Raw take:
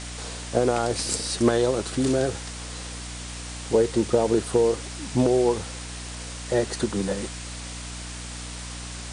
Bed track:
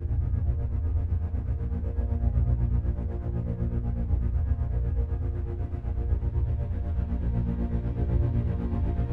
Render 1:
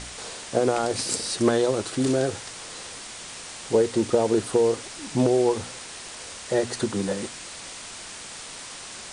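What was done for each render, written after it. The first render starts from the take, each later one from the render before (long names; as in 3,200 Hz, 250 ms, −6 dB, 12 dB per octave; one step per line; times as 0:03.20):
hum removal 60 Hz, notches 5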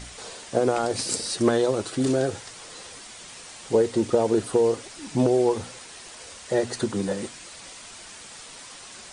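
broadband denoise 6 dB, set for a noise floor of −40 dBFS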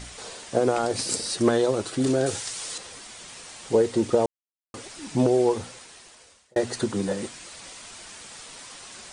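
0:02.26–0:02.78: high-shelf EQ 2,800 Hz +11.5 dB
0:04.26–0:04.74: silence
0:05.51–0:06.56: fade out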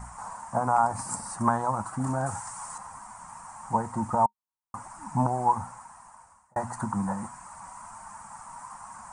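drawn EQ curve 210 Hz 0 dB, 420 Hz −24 dB, 930 Hz +14 dB, 3,600 Hz −30 dB, 7,800 Hz −5 dB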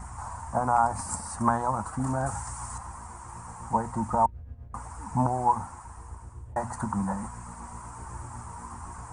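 mix in bed track −16.5 dB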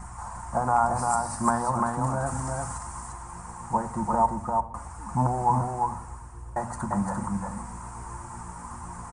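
on a send: single-tap delay 346 ms −3.5 dB
on the sum: rectangular room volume 2,000 cubic metres, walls furnished, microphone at 0.87 metres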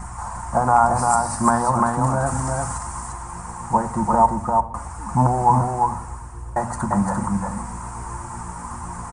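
level +7 dB
brickwall limiter −3 dBFS, peak gain reduction 2 dB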